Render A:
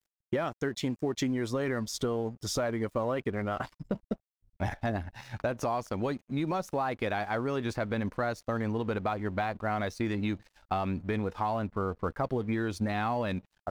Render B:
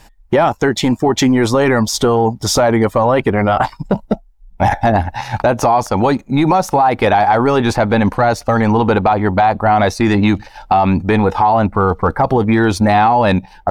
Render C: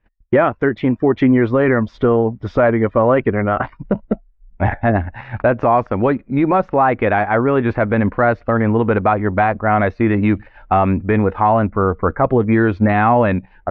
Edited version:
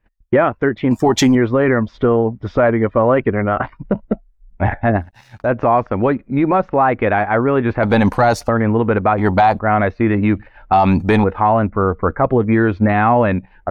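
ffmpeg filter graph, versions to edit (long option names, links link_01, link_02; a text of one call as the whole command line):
ffmpeg -i take0.wav -i take1.wav -i take2.wav -filter_complex "[1:a]asplit=4[link_01][link_02][link_03][link_04];[2:a]asplit=6[link_05][link_06][link_07][link_08][link_09][link_10];[link_05]atrim=end=0.912[link_11];[link_01]atrim=start=0.908:end=1.352[link_12];[link_06]atrim=start=1.348:end=5.06[link_13];[0:a]atrim=start=4.96:end=5.51[link_14];[link_07]atrim=start=5.41:end=7.832[link_15];[link_02]atrim=start=7.828:end=8.492[link_16];[link_08]atrim=start=8.488:end=9.182[link_17];[link_03]atrim=start=9.178:end=9.592[link_18];[link_09]atrim=start=9.588:end=10.732[link_19];[link_04]atrim=start=10.728:end=11.242[link_20];[link_10]atrim=start=11.238[link_21];[link_11][link_12]acrossfade=duration=0.004:curve1=hsin:curve2=hsin[link_22];[link_22][link_13]acrossfade=duration=0.004:curve1=hsin:curve2=hsin[link_23];[link_23][link_14]acrossfade=duration=0.1:curve1=tri:curve2=tri[link_24];[link_24][link_15]acrossfade=duration=0.1:curve1=tri:curve2=tri[link_25];[link_25][link_16]acrossfade=duration=0.004:curve1=hsin:curve2=hsin[link_26];[link_26][link_17]acrossfade=duration=0.004:curve1=hsin:curve2=hsin[link_27];[link_27][link_18]acrossfade=duration=0.004:curve1=hsin:curve2=hsin[link_28];[link_28][link_19]acrossfade=duration=0.004:curve1=hsin:curve2=hsin[link_29];[link_29][link_20]acrossfade=duration=0.004:curve1=hsin:curve2=hsin[link_30];[link_30][link_21]acrossfade=duration=0.004:curve1=hsin:curve2=hsin" out.wav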